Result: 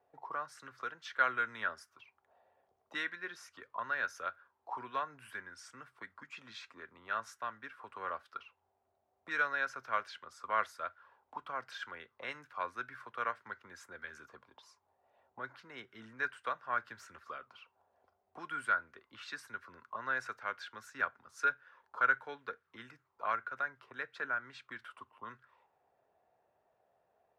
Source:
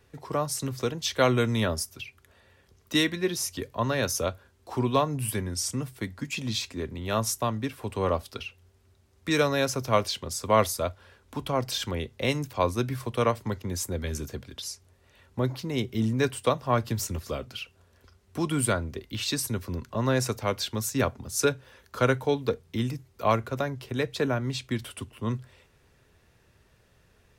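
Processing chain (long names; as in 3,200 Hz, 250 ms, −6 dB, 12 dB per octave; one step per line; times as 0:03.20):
envelope filter 700–1,500 Hz, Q 5.8, up, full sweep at −28 dBFS
level +3.5 dB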